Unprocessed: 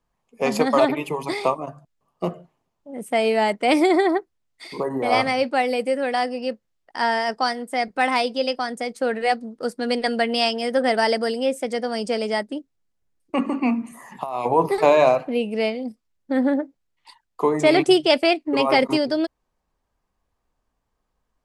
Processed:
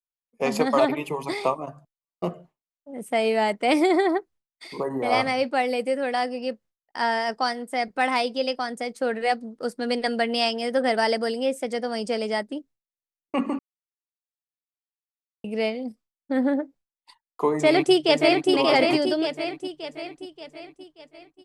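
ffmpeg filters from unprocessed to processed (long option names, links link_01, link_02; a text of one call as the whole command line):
ffmpeg -i in.wav -filter_complex "[0:a]asplit=2[link_01][link_02];[link_02]afade=type=in:start_time=17.5:duration=0.01,afade=type=out:start_time=18.51:duration=0.01,aecho=0:1:580|1160|1740|2320|2900|3480|4060:0.668344|0.334172|0.167086|0.083543|0.0417715|0.0208857|0.0104429[link_03];[link_01][link_03]amix=inputs=2:normalize=0,asplit=3[link_04][link_05][link_06];[link_04]atrim=end=13.59,asetpts=PTS-STARTPTS,afade=type=out:start_time=13.586:duration=0.004:curve=hsin[link_07];[link_05]atrim=start=13.59:end=15.44,asetpts=PTS-STARTPTS,volume=0[link_08];[link_06]atrim=start=15.44,asetpts=PTS-STARTPTS,afade=type=in:duration=0.004:curve=hsin[link_09];[link_07][link_08][link_09]concat=n=3:v=0:a=1,agate=range=-33dB:threshold=-43dB:ratio=3:detection=peak,volume=-2.5dB" out.wav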